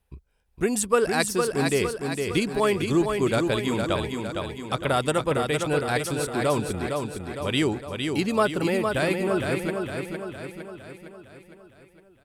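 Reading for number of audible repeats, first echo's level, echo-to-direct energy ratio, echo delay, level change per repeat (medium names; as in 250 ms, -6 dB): 6, -5.0 dB, -3.5 dB, 459 ms, -5.5 dB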